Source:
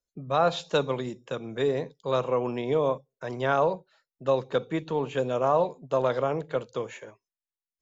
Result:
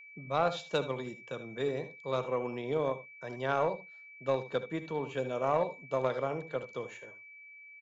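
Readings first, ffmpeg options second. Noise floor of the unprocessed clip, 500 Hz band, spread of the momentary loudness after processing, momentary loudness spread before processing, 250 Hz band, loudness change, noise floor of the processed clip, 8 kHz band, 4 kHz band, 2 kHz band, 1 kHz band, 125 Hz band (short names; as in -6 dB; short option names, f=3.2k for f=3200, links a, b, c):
under -85 dBFS, -6.5 dB, 13 LU, 11 LU, -6.5 dB, -6.5 dB, -53 dBFS, n/a, -6.5 dB, -3.5 dB, -6.0 dB, -6.5 dB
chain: -af "aecho=1:1:67|77:0.141|0.211,aeval=exprs='val(0)+0.00794*sin(2*PI*2300*n/s)':c=same,aeval=exprs='0.299*(cos(1*acos(clip(val(0)/0.299,-1,1)))-cos(1*PI/2))+0.0299*(cos(3*acos(clip(val(0)/0.299,-1,1)))-cos(3*PI/2))':c=same,volume=-4.5dB"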